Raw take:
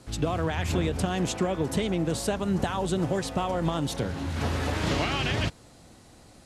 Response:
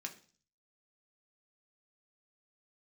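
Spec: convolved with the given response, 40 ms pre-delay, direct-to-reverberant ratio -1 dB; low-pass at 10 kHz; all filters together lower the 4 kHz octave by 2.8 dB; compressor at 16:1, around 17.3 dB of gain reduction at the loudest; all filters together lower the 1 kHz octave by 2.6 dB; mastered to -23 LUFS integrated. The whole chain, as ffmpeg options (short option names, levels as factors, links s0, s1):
-filter_complex "[0:a]lowpass=10000,equalizer=f=1000:t=o:g=-3.5,equalizer=f=4000:t=o:g=-3.5,acompressor=threshold=0.0112:ratio=16,asplit=2[s0][s1];[1:a]atrim=start_sample=2205,adelay=40[s2];[s1][s2]afir=irnorm=-1:irlink=0,volume=1.41[s3];[s0][s3]amix=inputs=2:normalize=0,volume=7.94"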